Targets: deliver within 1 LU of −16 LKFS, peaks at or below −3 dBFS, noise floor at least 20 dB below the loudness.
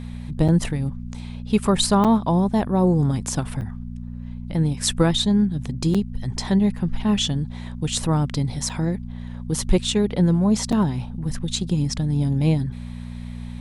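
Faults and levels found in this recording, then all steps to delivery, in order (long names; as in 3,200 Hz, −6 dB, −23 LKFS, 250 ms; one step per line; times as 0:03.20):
number of dropouts 6; longest dropout 6.4 ms; mains hum 60 Hz; hum harmonics up to 240 Hz; level of the hum −32 dBFS; integrated loudness −22.0 LKFS; sample peak −5.5 dBFS; target loudness −16.0 LKFS
→ repair the gap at 0:00.48/0:02.04/0:03.61/0:05.94/0:08.69/0:10.72, 6.4 ms
hum removal 60 Hz, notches 4
level +6 dB
brickwall limiter −3 dBFS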